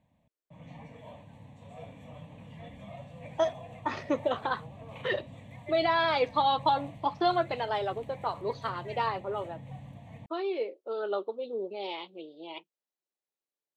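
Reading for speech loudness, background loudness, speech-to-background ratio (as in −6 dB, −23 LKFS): −31.0 LKFS, −47.0 LKFS, 16.0 dB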